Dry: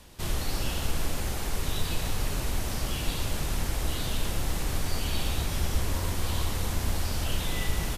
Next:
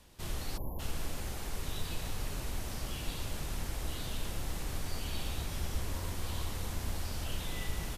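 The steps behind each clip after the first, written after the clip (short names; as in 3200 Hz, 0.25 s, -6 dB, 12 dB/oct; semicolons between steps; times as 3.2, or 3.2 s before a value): spectral delete 0.58–0.79, 1100–11000 Hz; gain -8 dB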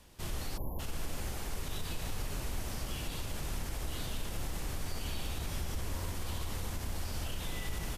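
bell 3900 Hz -2 dB 0.24 oct; limiter -28 dBFS, peak gain reduction 6 dB; gain +1 dB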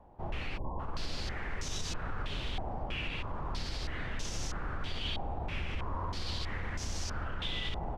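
stepped low-pass 3.1 Hz 800–6000 Hz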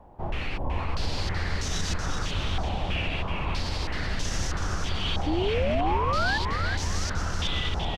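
painted sound rise, 5.26–6.38, 290–1800 Hz -34 dBFS; frequency-shifting echo 0.376 s, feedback 31%, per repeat -97 Hz, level -5.5 dB; gain +6.5 dB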